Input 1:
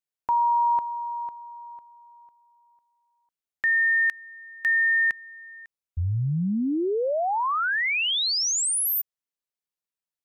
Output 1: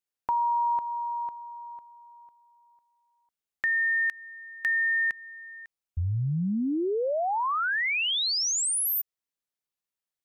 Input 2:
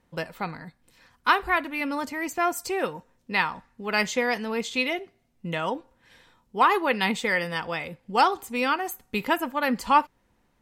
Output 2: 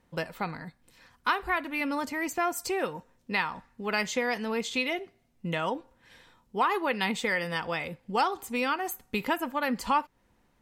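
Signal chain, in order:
downward compressor 2 to 1, threshold −27 dBFS

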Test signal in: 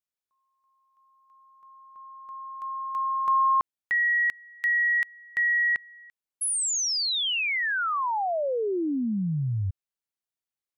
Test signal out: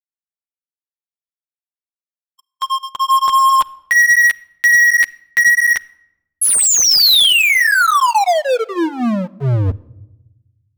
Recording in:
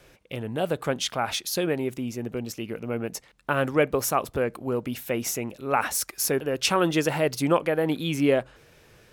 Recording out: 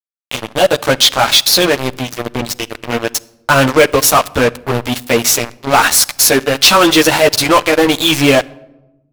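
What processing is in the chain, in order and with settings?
graphic EQ with 15 bands 160 Hz −9 dB, 400 Hz −6 dB, 4,000 Hz +9 dB
multi-voice chorus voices 6, 0.39 Hz, delay 12 ms, depth 3.5 ms
dead-zone distortion −38 dBFS
leveller curve on the samples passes 5
rectangular room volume 3,800 cubic metres, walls furnished, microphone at 0.39 metres
level +6.5 dB

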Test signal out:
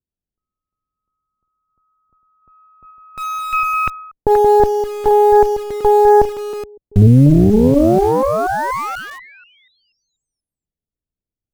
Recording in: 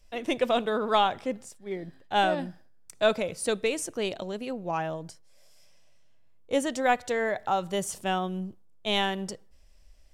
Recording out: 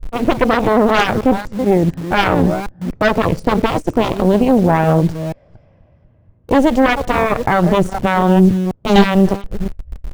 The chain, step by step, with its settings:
delay that plays each chunk backwards 242 ms, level −11 dB
spectral tilt −4.5 dB per octave
low-pass that shuts in the quiet parts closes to 450 Hz, open at −19.5 dBFS
harmonic generator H 3 −32 dB, 6 −11 dB, 7 −33 dB, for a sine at −7 dBFS
in parallel at −8 dB: bit reduction 6 bits
on the sum: boost into a limiter +10 dB
level −1 dB

